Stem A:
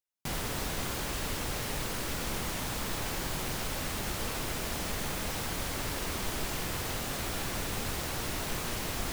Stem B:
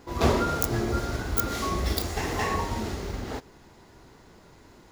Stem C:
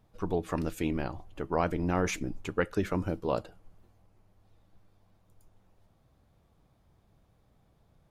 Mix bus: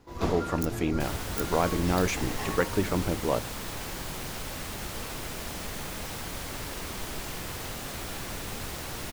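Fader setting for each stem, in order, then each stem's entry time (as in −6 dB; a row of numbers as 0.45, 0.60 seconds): −2.0, −8.5, +2.5 decibels; 0.75, 0.00, 0.00 seconds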